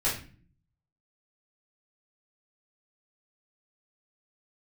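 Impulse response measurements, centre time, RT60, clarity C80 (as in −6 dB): 32 ms, 0.40 s, 11.5 dB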